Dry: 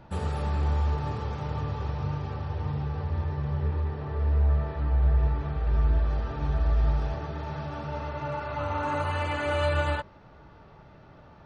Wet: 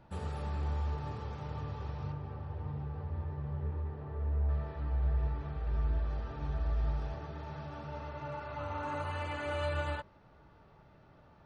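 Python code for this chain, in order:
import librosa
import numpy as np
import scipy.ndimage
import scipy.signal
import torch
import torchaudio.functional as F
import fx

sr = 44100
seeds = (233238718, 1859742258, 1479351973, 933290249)

y = fx.lowpass(x, sr, hz=1500.0, slope=6, at=(2.12, 4.49))
y = F.gain(torch.from_numpy(y), -8.5).numpy()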